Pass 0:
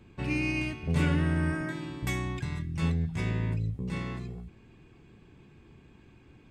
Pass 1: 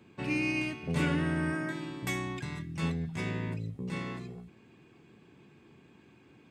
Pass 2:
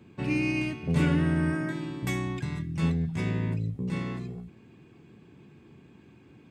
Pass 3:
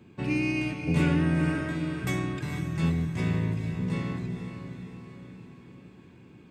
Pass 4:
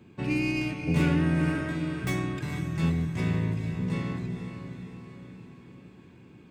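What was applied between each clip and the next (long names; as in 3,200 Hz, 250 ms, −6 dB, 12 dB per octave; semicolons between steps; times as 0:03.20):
high-pass filter 160 Hz 12 dB per octave
low-shelf EQ 310 Hz +8 dB
feedback delay with all-pass diffusion 464 ms, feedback 54%, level −8 dB
stylus tracing distortion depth 0.044 ms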